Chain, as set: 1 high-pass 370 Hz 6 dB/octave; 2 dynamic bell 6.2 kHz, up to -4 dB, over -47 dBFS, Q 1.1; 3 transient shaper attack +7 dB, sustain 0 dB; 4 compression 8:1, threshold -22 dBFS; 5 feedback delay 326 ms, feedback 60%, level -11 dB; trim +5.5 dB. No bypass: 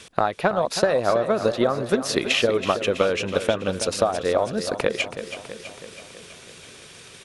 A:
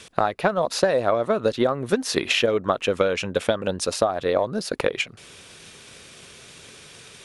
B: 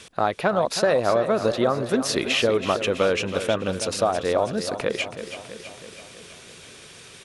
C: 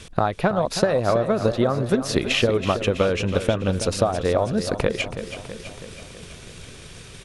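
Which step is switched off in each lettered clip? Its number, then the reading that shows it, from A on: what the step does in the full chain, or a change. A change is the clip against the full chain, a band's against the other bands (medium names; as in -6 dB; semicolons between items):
5, echo-to-direct -9.0 dB to none; 3, crest factor change -3.5 dB; 1, 125 Hz band +9.0 dB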